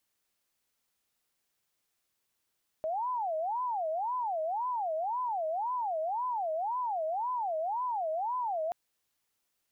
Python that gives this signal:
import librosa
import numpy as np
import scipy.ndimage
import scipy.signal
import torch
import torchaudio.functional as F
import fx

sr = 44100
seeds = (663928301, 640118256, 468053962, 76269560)

y = fx.siren(sr, length_s=5.88, kind='wail', low_hz=626.0, high_hz=1010.0, per_s=1.9, wave='sine', level_db=-29.5)